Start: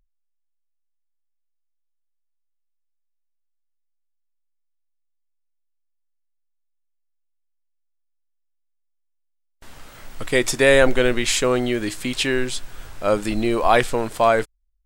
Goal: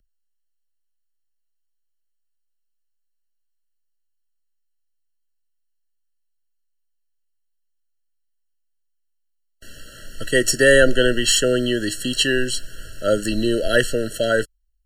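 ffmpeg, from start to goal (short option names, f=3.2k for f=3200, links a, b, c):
-filter_complex "[0:a]acrossover=split=190|930|2000[a][b][c][d];[d]acontrast=81[e];[a][b][c][e]amix=inputs=4:normalize=0,afftfilt=real='re*eq(mod(floor(b*sr/1024/660),2),0)':imag='im*eq(mod(floor(b*sr/1024/660),2),0)':win_size=1024:overlap=0.75,volume=1dB"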